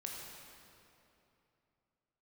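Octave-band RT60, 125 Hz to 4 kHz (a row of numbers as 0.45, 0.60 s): 3.4, 3.2, 3.0, 2.8, 2.5, 2.1 s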